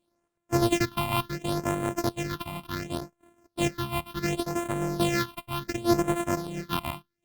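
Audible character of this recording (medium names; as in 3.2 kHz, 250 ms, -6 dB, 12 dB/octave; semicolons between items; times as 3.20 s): a buzz of ramps at a fixed pitch in blocks of 128 samples; phasing stages 6, 0.69 Hz, lowest notch 430–4900 Hz; Opus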